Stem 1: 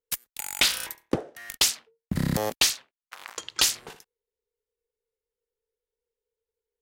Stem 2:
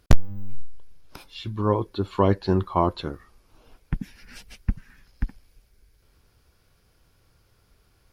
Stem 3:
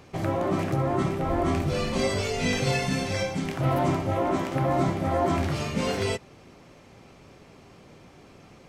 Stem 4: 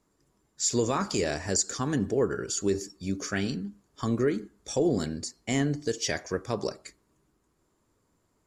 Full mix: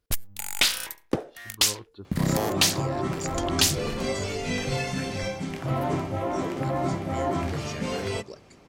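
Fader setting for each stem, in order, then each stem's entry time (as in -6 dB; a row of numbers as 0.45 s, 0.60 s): 0.0 dB, -16.5 dB, -3.0 dB, -11.5 dB; 0.00 s, 0.00 s, 2.05 s, 1.65 s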